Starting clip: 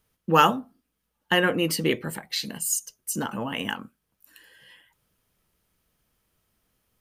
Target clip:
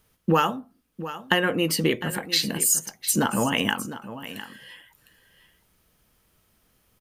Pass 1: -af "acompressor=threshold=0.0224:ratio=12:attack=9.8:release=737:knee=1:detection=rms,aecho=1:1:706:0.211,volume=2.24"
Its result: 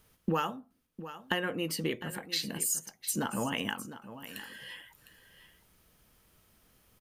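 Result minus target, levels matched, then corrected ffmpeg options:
compression: peak gain reduction +10 dB
-af "acompressor=threshold=0.0794:ratio=12:attack=9.8:release=737:knee=1:detection=rms,aecho=1:1:706:0.211,volume=2.24"

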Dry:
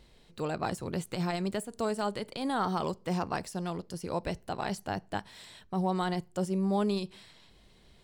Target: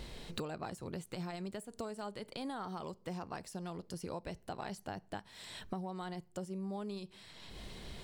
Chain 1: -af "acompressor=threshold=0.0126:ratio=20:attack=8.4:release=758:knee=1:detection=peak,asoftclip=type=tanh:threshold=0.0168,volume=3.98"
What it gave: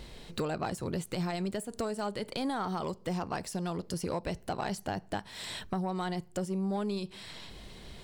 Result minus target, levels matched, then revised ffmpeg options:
compression: peak gain reduction -9.5 dB
-af "acompressor=threshold=0.00398:ratio=20:attack=8.4:release=758:knee=1:detection=peak,asoftclip=type=tanh:threshold=0.0168,volume=3.98"

